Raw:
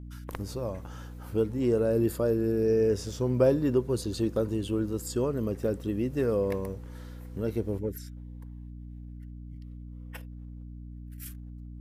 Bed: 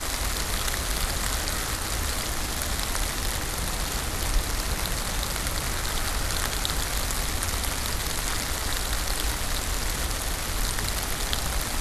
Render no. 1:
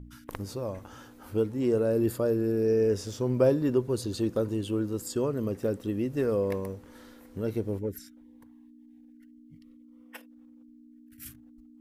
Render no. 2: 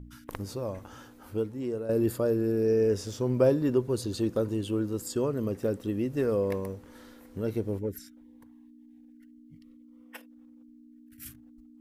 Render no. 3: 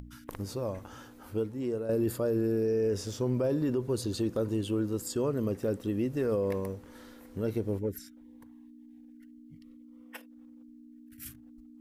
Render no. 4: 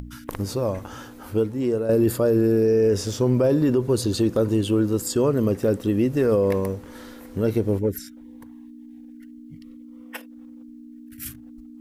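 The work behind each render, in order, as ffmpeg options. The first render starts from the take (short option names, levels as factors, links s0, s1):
-af "bandreject=f=60:t=h:w=4,bandreject=f=120:t=h:w=4,bandreject=f=180:t=h:w=4"
-filter_complex "[0:a]asplit=2[s0][s1];[s0]atrim=end=1.89,asetpts=PTS-STARTPTS,afade=t=out:st=0.99:d=0.9:silence=0.298538[s2];[s1]atrim=start=1.89,asetpts=PTS-STARTPTS,afade=t=in:d=0.004:c=hsin:silence=0.298538[s3];[s2][s3]concat=n=2:v=0:a=1"
-af "alimiter=limit=0.0841:level=0:latency=1:release=48,acompressor=mode=upward:threshold=0.00398:ratio=2.5"
-af "volume=2.99"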